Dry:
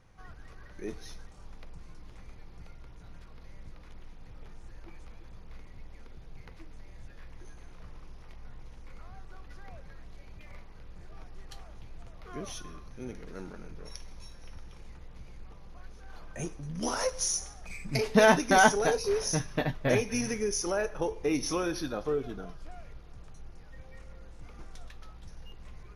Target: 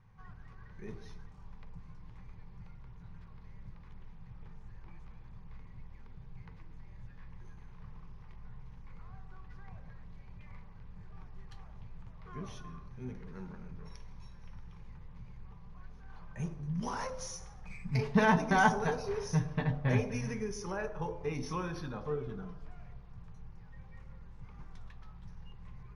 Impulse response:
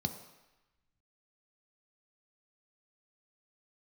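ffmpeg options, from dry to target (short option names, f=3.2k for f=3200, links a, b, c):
-filter_complex "[0:a]aemphasis=mode=reproduction:type=75fm,bandreject=f=70.93:t=h:w=4,bandreject=f=141.86:t=h:w=4,asplit=2[a][b];[b]highshelf=f=2k:t=q:w=3:g=-13.5[c];[1:a]atrim=start_sample=2205,lowpass=3k[d];[c][d]afir=irnorm=-1:irlink=0,volume=-9dB[e];[a][e]amix=inputs=2:normalize=0,volume=-5dB"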